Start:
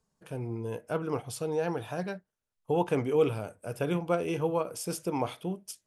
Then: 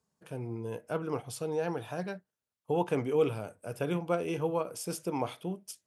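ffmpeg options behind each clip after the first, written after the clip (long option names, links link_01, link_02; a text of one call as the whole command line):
ffmpeg -i in.wav -af "highpass=83,volume=-2dB" out.wav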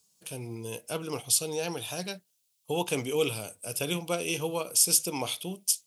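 ffmpeg -i in.wav -af "aexciter=amount=6.9:drive=5.3:freq=2500,volume=-1dB" out.wav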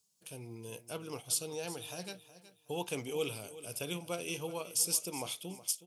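ffmpeg -i in.wav -af "asoftclip=type=hard:threshold=-12dB,aecho=1:1:370|740|1110:0.168|0.0487|0.0141,volume=-8dB" out.wav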